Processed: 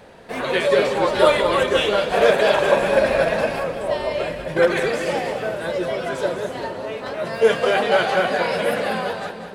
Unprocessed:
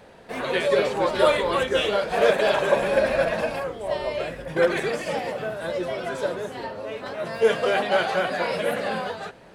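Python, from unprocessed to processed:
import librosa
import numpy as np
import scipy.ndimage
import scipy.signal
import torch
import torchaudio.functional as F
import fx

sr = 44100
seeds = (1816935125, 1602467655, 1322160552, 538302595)

y = fx.echo_split(x, sr, split_hz=460.0, low_ms=450, high_ms=192, feedback_pct=52, wet_db=-10)
y = y * 10.0 ** (3.5 / 20.0)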